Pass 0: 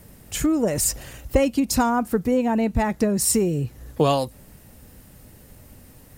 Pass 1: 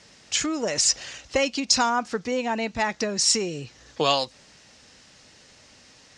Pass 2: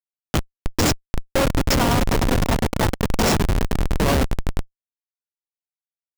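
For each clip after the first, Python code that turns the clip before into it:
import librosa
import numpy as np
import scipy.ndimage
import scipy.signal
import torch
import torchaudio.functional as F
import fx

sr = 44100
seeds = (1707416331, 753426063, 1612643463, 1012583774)

y1 = scipy.signal.sosfilt(scipy.signal.butter(6, 6100.0, 'lowpass', fs=sr, output='sos'), x)
y1 = fx.tilt_eq(y1, sr, slope=4.5)
y2 = fx.echo_swell(y1, sr, ms=102, loudest=5, wet_db=-9.5)
y2 = fx.schmitt(y2, sr, flips_db=-16.0)
y2 = y2 * 10.0 ** (7.0 / 20.0)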